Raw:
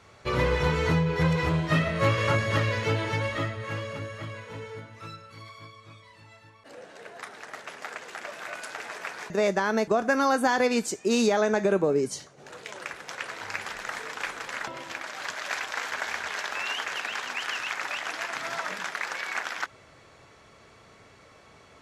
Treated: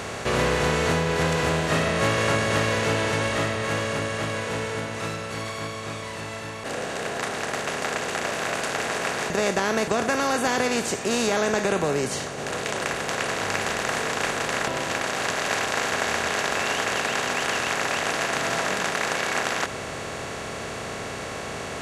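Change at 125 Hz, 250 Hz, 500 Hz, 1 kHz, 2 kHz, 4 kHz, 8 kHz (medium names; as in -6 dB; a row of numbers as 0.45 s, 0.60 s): 0.0 dB, +1.5 dB, +3.0 dB, +5.0 dB, +5.0 dB, +7.0 dB, +10.0 dB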